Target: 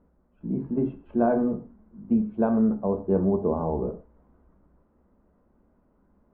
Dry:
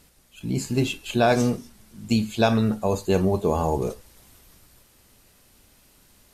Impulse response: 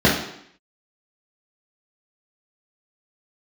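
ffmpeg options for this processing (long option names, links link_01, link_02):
-filter_complex "[0:a]lowpass=frequency=1200:width=0.5412,lowpass=frequency=1200:width=1.3066,asplit=2[link_01][link_02];[1:a]atrim=start_sample=2205,atrim=end_sample=6174[link_03];[link_02][link_03]afir=irnorm=-1:irlink=0,volume=-30dB[link_04];[link_01][link_04]amix=inputs=2:normalize=0,volume=-5.5dB"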